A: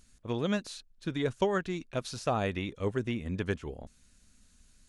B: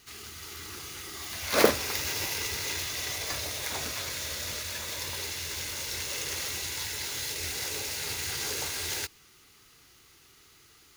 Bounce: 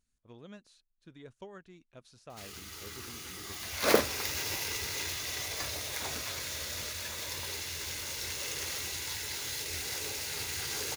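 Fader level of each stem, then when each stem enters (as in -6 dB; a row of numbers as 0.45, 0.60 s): -19.5, -3.0 dB; 0.00, 2.30 s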